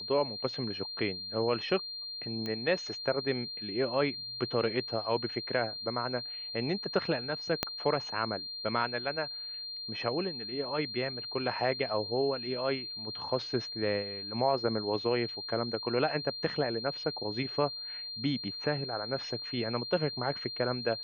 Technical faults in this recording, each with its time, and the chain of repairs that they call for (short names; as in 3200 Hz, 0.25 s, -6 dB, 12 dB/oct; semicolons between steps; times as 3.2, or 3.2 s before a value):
tone 4200 Hz -38 dBFS
2.46 pop -23 dBFS
7.63 pop -11 dBFS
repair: de-click; notch 4200 Hz, Q 30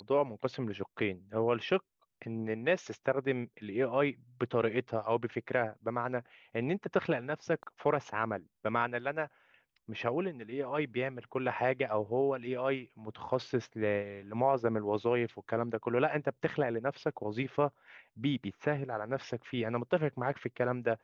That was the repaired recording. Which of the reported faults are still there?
7.63 pop